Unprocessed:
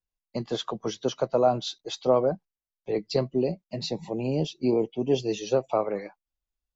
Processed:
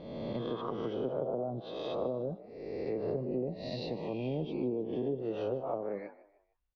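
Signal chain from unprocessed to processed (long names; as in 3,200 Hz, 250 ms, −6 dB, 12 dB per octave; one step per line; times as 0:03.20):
peak hold with a rise ahead of every peak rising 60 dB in 1.03 s
treble cut that deepens with the level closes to 430 Hz, closed at −17 dBFS
0:03.08–0:05.52: high-shelf EQ 2,500 Hz +8.5 dB
downward compressor 2 to 1, threshold −38 dBFS, peak gain reduction 11 dB
high-frequency loss of the air 280 metres
echo with shifted repeats 153 ms, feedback 36%, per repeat +54 Hz, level −17.5 dB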